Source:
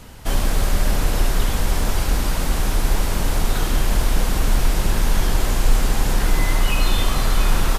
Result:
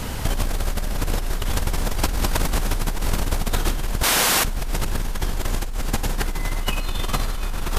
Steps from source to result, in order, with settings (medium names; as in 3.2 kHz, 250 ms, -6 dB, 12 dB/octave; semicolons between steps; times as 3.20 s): 4.03–4.45 s: high-pass 1.3 kHz 6 dB/octave; compressor with a negative ratio -25 dBFS, ratio -1; transformer saturation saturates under 68 Hz; trim +4 dB